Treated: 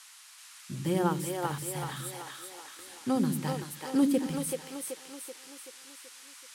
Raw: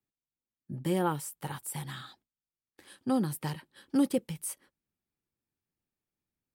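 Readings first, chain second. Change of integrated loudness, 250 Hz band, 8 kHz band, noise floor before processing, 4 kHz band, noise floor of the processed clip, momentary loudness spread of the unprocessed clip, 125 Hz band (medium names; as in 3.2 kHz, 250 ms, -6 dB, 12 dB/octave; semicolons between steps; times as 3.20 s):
+0.5 dB, +2.5 dB, +3.5 dB, under -85 dBFS, +4.5 dB, -53 dBFS, 15 LU, +2.0 dB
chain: band noise 1–11 kHz -53 dBFS; two-band feedback delay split 350 Hz, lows 82 ms, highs 381 ms, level -3 dB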